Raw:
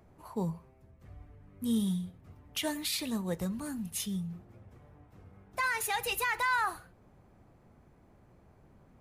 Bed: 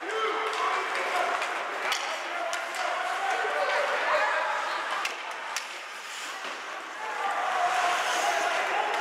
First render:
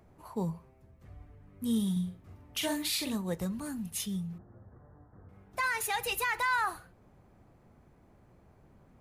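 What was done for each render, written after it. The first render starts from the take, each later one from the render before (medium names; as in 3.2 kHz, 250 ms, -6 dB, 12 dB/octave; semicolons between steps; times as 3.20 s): 1.92–3.15 s: doubling 44 ms -4 dB; 4.38–5.29 s: steep low-pass 1.8 kHz 72 dB/octave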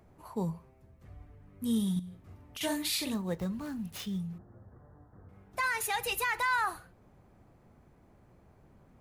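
1.99–2.61 s: compression, threshold -40 dBFS; 3.14–4.20 s: median filter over 5 samples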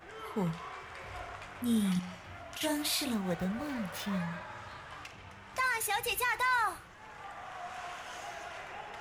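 add bed -17 dB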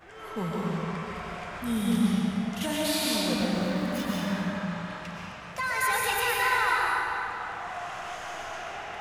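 algorithmic reverb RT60 3.2 s, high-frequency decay 0.8×, pre-delay 80 ms, DRR -5.5 dB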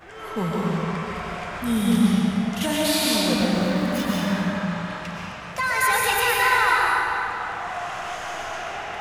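trim +6 dB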